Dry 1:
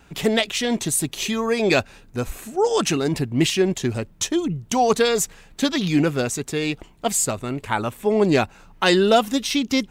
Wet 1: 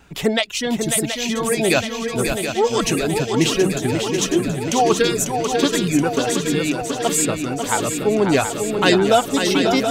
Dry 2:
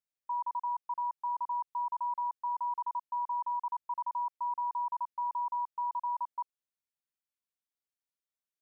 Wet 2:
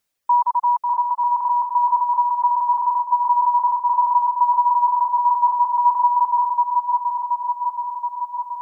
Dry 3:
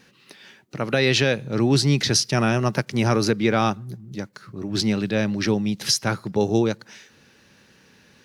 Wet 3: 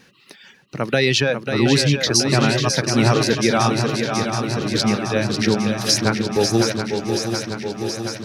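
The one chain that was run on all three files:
reverb removal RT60 1.6 s; on a send: swung echo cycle 0.726 s, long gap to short 3:1, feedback 68%, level -6.5 dB; on the sum: match loudness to -19 LUFS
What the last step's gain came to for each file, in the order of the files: +1.5, +18.0, +3.0 dB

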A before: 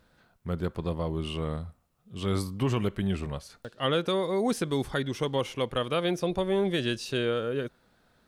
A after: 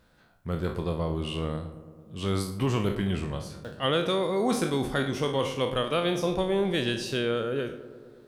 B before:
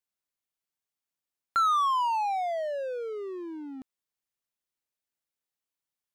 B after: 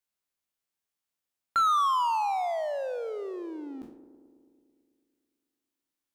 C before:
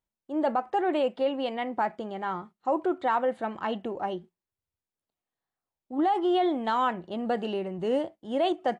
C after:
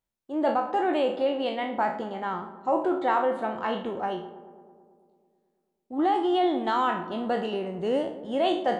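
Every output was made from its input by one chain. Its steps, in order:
spectral trails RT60 0.42 s; on a send: darkening echo 0.11 s, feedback 75%, low-pass 1900 Hz, level -14 dB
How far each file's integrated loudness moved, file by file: +1.5, +0.5, +1.5 LU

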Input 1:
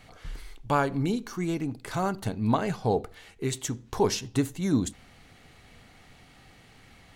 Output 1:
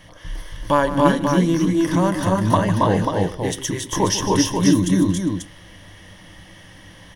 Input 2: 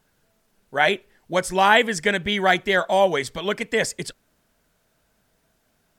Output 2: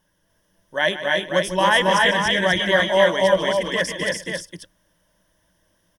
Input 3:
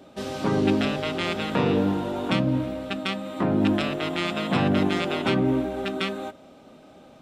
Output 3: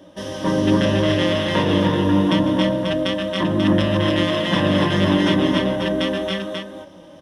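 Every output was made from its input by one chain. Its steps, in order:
ripple EQ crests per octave 1.2, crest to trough 12 dB; on a send: tapped delay 0.15/0.275/0.296/0.403/0.539 s -13/-4/-3.5/-20/-5.5 dB; on the sum: match loudness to -19 LUFS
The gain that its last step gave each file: +5.5, -3.5, +1.0 dB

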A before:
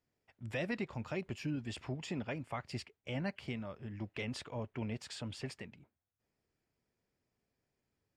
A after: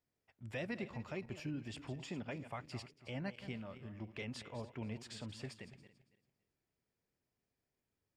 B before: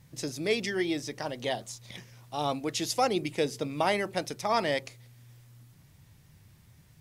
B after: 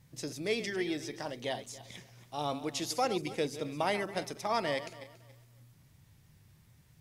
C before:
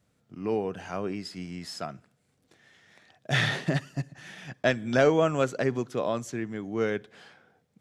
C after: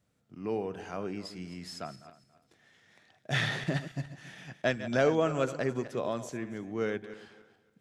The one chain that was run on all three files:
regenerating reverse delay 0.14 s, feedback 47%, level -12.5 dB; gain -4.5 dB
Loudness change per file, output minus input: -4.0, -4.5, -4.0 LU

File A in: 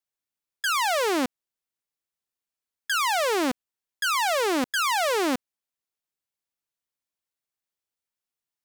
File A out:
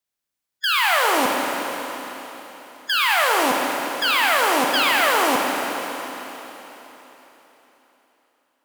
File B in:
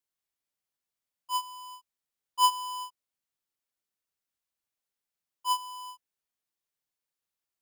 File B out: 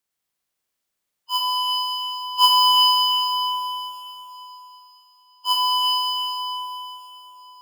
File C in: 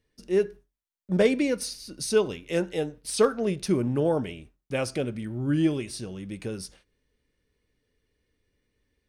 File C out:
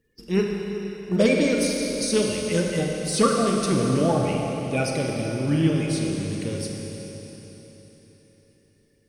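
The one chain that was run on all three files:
bin magnitudes rounded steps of 30 dB; dynamic EQ 380 Hz, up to -5 dB, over -38 dBFS, Q 2; Schroeder reverb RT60 3.9 s, combs from 31 ms, DRR 0 dB; normalise peaks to -6 dBFS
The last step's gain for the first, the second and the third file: +4.5, +7.0, +4.0 dB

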